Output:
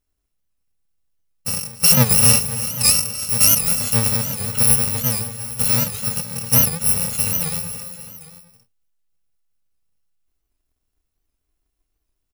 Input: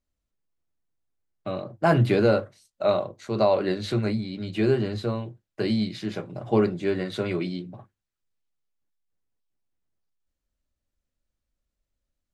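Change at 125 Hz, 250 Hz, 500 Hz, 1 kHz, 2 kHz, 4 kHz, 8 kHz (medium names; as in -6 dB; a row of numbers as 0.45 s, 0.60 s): +4.5 dB, -2.0 dB, -8.5 dB, -0.5 dB, +5.0 dB, +15.0 dB, no reading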